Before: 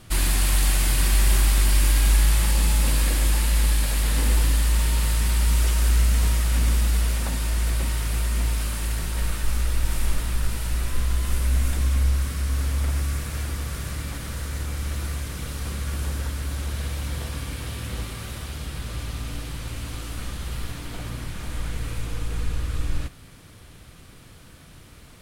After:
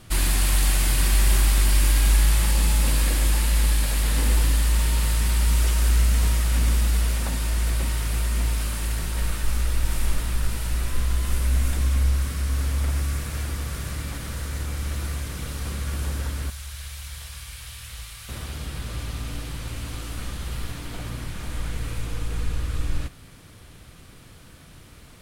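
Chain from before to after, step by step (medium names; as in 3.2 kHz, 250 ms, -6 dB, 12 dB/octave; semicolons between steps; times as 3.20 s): 16.50–18.29 s: amplifier tone stack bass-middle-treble 10-0-10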